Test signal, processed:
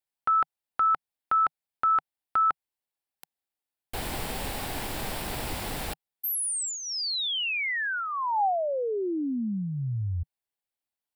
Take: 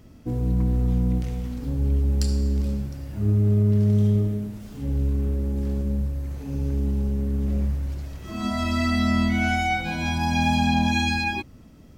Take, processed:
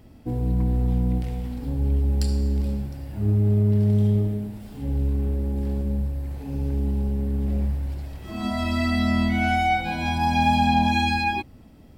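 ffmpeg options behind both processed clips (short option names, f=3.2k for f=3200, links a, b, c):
-af "equalizer=f=160:t=o:w=0.33:g=-3,equalizer=f=800:t=o:w=0.33:g=6,equalizer=f=1.25k:t=o:w=0.33:g=-4,equalizer=f=6.3k:t=o:w=0.33:g=-9"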